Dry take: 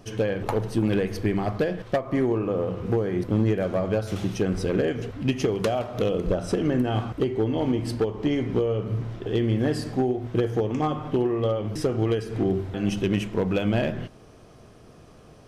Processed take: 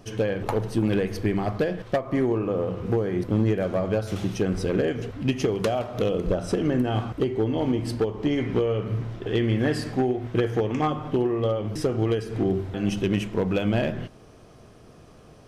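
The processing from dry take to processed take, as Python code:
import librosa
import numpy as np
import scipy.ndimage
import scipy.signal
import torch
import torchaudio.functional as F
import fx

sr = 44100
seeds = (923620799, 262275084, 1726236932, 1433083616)

y = fx.dynamic_eq(x, sr, hz=2000.0, q=0.93, threshold_db=-47.0, ratio=4.0, max_db=6, at=(8.37, 10.9))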